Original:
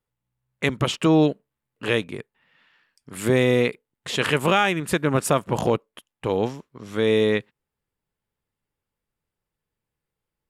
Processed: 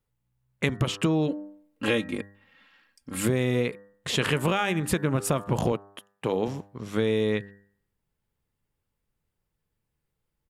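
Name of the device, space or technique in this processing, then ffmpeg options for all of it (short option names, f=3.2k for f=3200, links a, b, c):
ASMR close-microphone chain: -filter_complex "[0:a]asplit=3[a][b][c];[a]afade=t=out:st=1.27:d=0.02[d];[b]aecho=1:1:3.7:0.75,afade=t=in:st=1.27:d=0.02,afade=t=out:st=3.25:d=0.02[e];[c]afade=t=in:st=3.25:d=0.02[f];[d][e][f]amix=inputs=3:normalize=0,lowshelf=f=200:g=7.5,bandreject=f=99.98:t=h:w=4,bandreject=f=199.96:t=h:w=4,bandreject=f=299.94:t=h:w=4,bandreject=f=399.92:t=h:w=4,bandreject=f=499.9:t=h:w=4,bandreject=f=599.88:t=h:w=4,bandreject=f=699.86:t=h:w=4,bandreject=f=799.84:t=h:w=4,bandreject=f=899.82:t=h:w=4,bandreject=f=999.8:t=h:w=4,bandreject=f=1.09978k:t=h:w=4,bandreject=f=1.19976k:t=h:w=4,bandreject=f=1.29974k:t=h:w=4,bandreject=f=1.39972k:t=h:w=4,bandreject=f=1.4997k:t=h:w=4,bandreject=f=1.59968k:t=h:w=4,bandreject=f=1.69966k:t=h:w=4,bandreject=f=1.79964k:t=h:w=4,bandreject=f=1.89962k:t=h:w=4,acompressor=threshold=-21dB:ratio=6,highshelf=f=12k:g=3,asettb=1/sr,asplit=3[g][h][i];[g]atrim=end=5.724[j];[h]atrim=start=5.72:end=6.48,asetpts=PTS-STARTPTS,afade=t=in:d=0.004:c=qsin,afade=t=out:st=0.756:d=0.004:c=qsin,highpass=170[k];[i]atrim=start=6.476[l];[j][k]acrossfade=d=0.004:c1=hsin:c2=qsin[m];[m][l]acrossfade=d=0.004:c1=qsin:c2=hsin"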